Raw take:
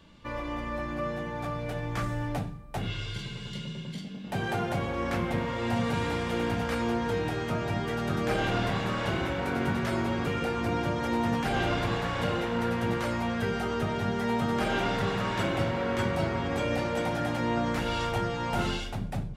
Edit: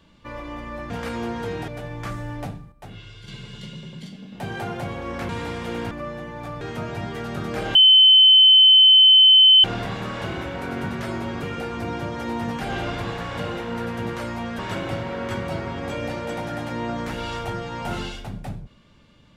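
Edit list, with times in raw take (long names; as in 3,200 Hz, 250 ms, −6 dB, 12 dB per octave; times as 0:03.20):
0:00.90–0:01.60: swap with 0:06.56–0:07.34
0:02.64–0:03.20: clip gain −7.5 dB
0:05.21–0:05.94: remove
0:08.48: insert tone 3,060 Hz −8.5 dBFS 1.89 s
0:13.43–0:15.27: remove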